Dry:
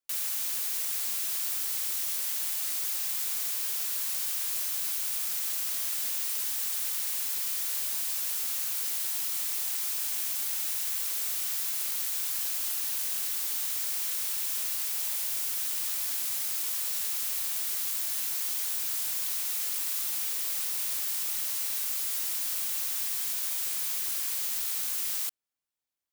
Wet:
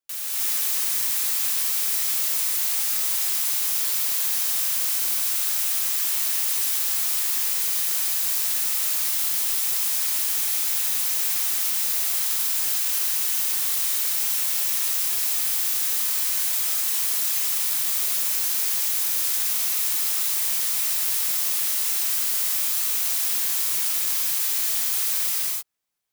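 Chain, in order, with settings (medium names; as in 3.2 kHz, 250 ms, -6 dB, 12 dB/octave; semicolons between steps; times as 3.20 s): gated-style reverb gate 340 ms rising, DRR -7 dB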